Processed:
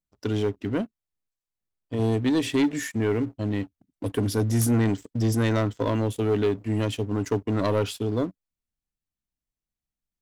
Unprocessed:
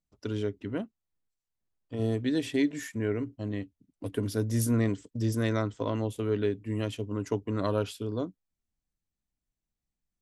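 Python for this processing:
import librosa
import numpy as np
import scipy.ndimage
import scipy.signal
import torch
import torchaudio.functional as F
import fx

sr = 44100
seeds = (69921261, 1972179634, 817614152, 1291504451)

y = fx.leveller(x, sr, passes=2)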